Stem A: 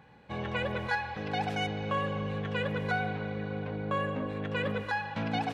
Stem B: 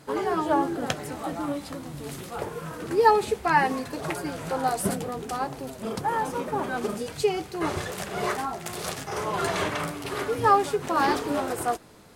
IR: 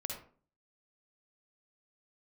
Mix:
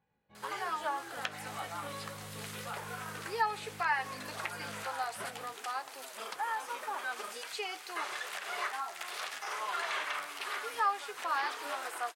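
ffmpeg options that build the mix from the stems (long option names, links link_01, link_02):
-filter_complex "[0:a]dynaudnorm=framelen=190:gausssize=9:maxgain=9dB,flanger=delay=17.5:depth=2.3:speed=1.8,volume=-20dB[link_01];[1:a]acrossover=split=3800[link_02][link_03];[link_03]acompressor=threshold=-46dB:ratio=4:attack=1:release=60[link_04];[link_02][link_04]amix=inputs=2:normalize=0,highpass=1200,adelay=350,volume=3dB[link_05];[link_01][link_05]amix=inputs=2:normalize=0,acompressor=threshold=-42dB:ratio=1.5"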